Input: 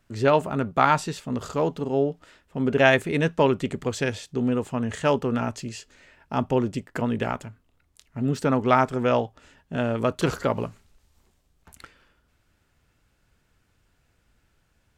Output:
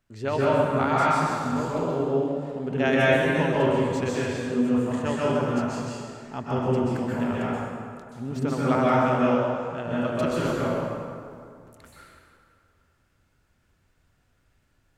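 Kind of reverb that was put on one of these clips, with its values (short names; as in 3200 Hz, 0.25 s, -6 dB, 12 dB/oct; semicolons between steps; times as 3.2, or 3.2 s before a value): plate-style reverb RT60 2.3 s, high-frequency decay 0.6×, pre-delay 0.115 s, DRR -7.5 dB; gain -9 dB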